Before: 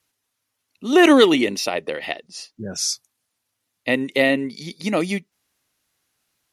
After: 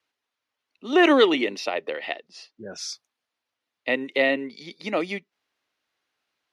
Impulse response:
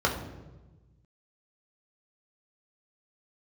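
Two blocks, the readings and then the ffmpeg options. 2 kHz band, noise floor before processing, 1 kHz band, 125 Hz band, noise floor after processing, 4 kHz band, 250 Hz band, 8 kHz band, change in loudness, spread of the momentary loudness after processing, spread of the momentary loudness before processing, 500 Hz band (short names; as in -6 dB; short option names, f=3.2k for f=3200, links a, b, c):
-3.0 dB, -78 dBFS, -2.5 dB, -13.0 dB, -85 dBFS, -5.0 dB, -6.5 dB, -12.5 dB, -4.0 dB, 20 LU, 18 LU, -3.5 dB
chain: -filter_complex "[0:a]acrossover=split=280 4700:gain=0.2 1 0.112[a][b][c];[a][b][c]amix=inputs=3:normalize=0,volume=-2.5dB"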